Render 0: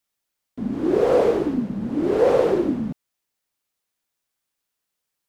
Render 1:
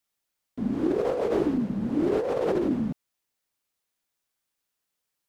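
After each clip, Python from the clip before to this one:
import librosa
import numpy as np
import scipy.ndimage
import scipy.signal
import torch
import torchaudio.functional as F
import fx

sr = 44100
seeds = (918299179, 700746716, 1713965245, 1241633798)

y = fx.over_compress(x, sr, threshold_db=-21.0, ratio=-1.0)
y = F.gain(torch.from_numpy(y), -3.5).numpy()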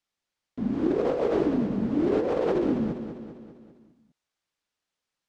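y = scipy.signal.sosfilt(scipy.signal.butter(2, 6000.0, 'lowpass', fs=sr, output='sos'), x)
y = fx.echo_feedback(y, sr, ms=199, feedback_pct=55, wet_db=-9.5)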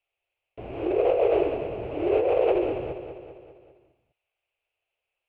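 y = fx.curve_eq(x, sr, hz=(110.0, 230.0, 360.0, 680.0, 990.0, 1800.0, 2600.0, 3700.0, 5900.0, 9800.0), db=(0, -29, -1, 6, -4, -7, 10, -10, -23, -8))
y = F.gain(torch.from_numpy(y), 2.0).numpy()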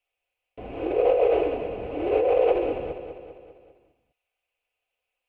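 y = x + 0.45 * np.pad(x, (int(4.0 * sr / 1000.0), 0))[:len(x)]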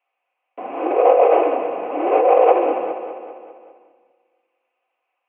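y = fx.cabinet(x, sr, low_hz=280.0, low_slope=24, high_hz=2500.0, hz=(420.0, 780.0, 1100.0), db=(-7, 6, 10))
y = fx.rev_freeverb(y, sr, rt60_s=2.1, hf_ratio=0.6, predelay_ms=75, drr_db=18.0)
y = F.gain(torch.from_numpy(y), 8.0).numpy()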